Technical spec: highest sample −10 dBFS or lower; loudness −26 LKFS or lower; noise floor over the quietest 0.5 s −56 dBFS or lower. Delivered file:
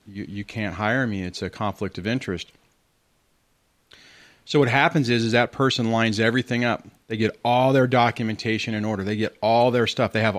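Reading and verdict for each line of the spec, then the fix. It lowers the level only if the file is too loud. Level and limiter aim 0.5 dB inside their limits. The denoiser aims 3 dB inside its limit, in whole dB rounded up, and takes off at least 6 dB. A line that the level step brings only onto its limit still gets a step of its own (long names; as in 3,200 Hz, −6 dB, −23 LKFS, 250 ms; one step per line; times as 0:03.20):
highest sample −3.5 dBFS: out of spec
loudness −22.5 LKFS: out of spec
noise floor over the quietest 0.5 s −66 dBFS: in spec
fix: level −4 dB
brickwall limiter −10.5 dBFS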